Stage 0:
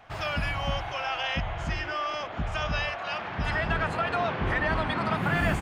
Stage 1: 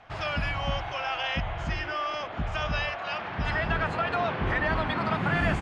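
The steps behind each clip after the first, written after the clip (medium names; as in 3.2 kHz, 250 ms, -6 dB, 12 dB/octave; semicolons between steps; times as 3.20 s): low-pass 6.2 kHz 12 dB/octave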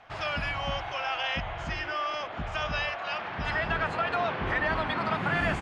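bass shelf 270 Hz -6 dB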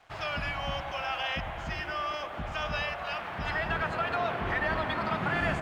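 crossover distortion -59 dBFS; feedback echo behind a low-pass 104 ms, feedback 71%, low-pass 1.3 kHz, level -9 dB; trim -2 dB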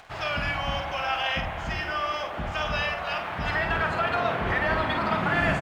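upward compressor, threshold -48 dBFS; doubling 49 ms -6.5 dB; trim +4 dB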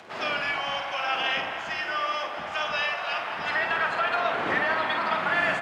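wind noise 480 Hz -37 dBFS; frequency weighting A; two-band feedback delay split 950 Hz, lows 132 ms, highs 212 ms, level -13 dB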